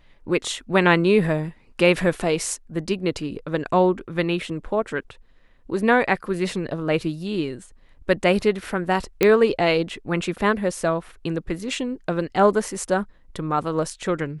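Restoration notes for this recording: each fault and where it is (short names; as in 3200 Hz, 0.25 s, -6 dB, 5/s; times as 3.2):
9.23 pop -4 dBFS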